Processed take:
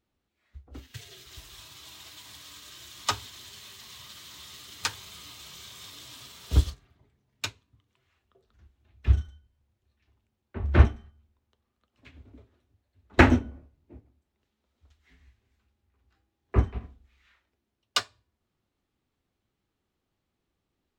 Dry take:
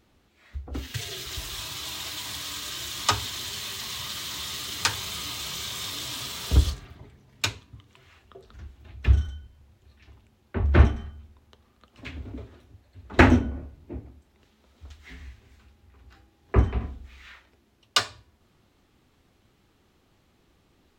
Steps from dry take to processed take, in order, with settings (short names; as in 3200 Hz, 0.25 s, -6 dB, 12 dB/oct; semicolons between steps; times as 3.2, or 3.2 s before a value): upward expander 1.5:1, over -44 dBFS